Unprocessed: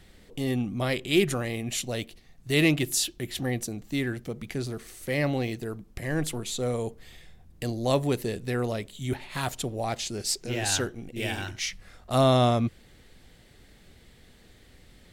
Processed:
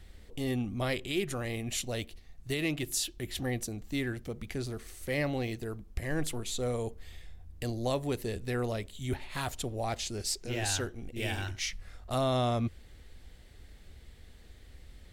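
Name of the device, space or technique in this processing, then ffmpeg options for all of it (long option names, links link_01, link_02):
car stereo with a boomy subwoofer: -af "lowshelf=frequency=100:width_type=q:width=1.5:gain=8,alimiter=limit=-16.5dB:level=0:latency=1:release=294,volume=-3.5dB"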